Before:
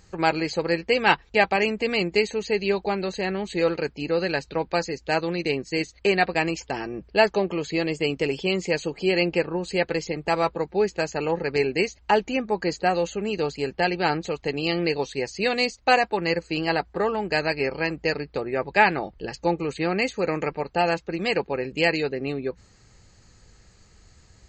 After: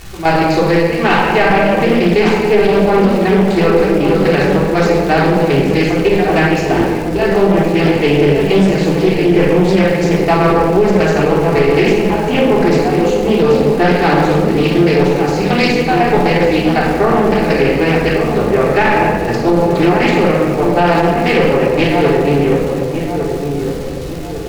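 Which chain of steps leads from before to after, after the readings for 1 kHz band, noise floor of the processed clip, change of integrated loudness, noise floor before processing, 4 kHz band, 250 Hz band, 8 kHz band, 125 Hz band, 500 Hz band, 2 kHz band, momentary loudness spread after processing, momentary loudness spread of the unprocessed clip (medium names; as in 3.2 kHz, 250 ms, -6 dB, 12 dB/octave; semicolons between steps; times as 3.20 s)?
+11.0 dB, -19 dBFS, +12.5 dB, -56 dBFS, +7.0 dB, +16.0 dB, +9.0 dB, +18.0 dB, +13.0 dB, +8.5 dB, 3 LU, 7 LU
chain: companding laws mixed up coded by mu; treble shelf 3.4 kHz -11 dB; trance gate "x..xx.xxx" 180 bpm -12 dB; crackle 330 per s -33 dBFS; in parallel at -3.5 dB: one-sided clip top -28.5 dBFS; on the sum: flange 0.19 Hz, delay 1.1 ms, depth 3.8 ms, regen +89%; on a send: filtered feedback delay 1152 ms, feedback 51%, low-pass 960 Hz, level -6 dB; on the sum: simulated room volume 1500 m³, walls mixed, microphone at 3.4 m; loudness maximiser +10 dB; loudspeaker Doppler distortion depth 0.31 ms; trim -1 dB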